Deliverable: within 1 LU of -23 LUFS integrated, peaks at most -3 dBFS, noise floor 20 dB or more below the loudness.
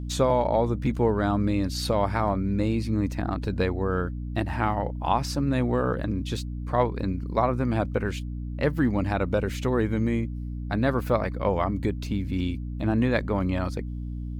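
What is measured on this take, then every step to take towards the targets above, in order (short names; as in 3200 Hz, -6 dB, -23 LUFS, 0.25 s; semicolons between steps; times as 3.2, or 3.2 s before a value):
hum 60 Hz; harmonics up to 300 Hz; hum level -30 dBFS; loudness -26.5 LUFS; peak -9.0 dBFS; loudness target -23.0 LUFS
-> de-hum 60 Hz, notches 5; gain +3.5 dB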